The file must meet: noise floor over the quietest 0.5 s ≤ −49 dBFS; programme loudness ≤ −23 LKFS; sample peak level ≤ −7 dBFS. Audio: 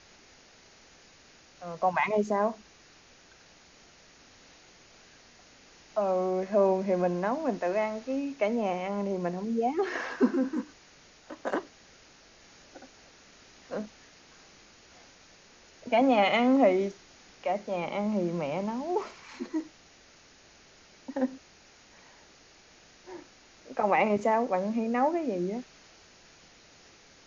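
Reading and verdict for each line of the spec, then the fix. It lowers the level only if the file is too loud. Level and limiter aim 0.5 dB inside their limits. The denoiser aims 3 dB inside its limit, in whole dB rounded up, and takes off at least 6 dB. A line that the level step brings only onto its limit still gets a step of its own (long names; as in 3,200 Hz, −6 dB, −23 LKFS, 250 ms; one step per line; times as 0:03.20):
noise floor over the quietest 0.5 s −57 dBFS: in spec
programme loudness −29.0 LKFS: in spec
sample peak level −11.0 dBFS: in spec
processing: no processing needed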